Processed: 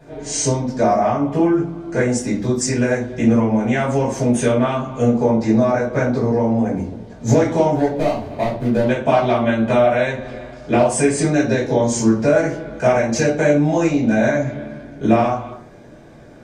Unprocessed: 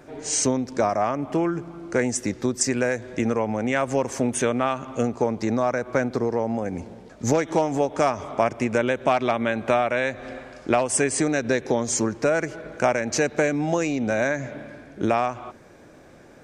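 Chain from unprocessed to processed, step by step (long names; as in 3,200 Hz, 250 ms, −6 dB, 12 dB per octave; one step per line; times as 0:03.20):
0:07.72–0:08.89: running median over 41 samples
high-shelf EQ 7,500 Hz −4.5 dB
notch filter 1,300 Hz, Q 14
convolution reverb RT60 0.45 s, pre-delay 3 ms, DRR −8.5 dB
level −8 dB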